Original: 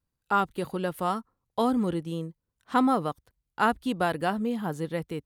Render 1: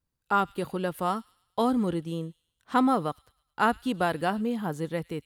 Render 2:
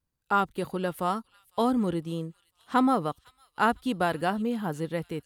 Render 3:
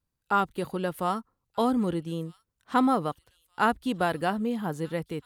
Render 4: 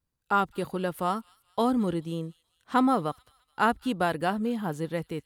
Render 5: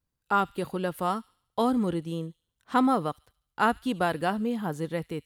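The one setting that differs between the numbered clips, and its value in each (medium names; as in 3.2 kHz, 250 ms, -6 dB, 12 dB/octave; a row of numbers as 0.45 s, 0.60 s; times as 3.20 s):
feedback echo behind a high-pass, time: 106 ms, 504 ms, 1236 ms, 214 ms, 72 ms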